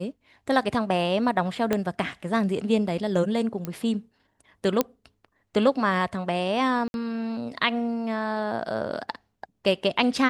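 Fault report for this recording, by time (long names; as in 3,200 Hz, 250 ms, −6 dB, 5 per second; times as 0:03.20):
0:01.73: click −10 dBFS
0:03.65: click −17 dBFS
0:04.81: click −7 dBFS
0:06.88–0:06.94: drop-out 61 ms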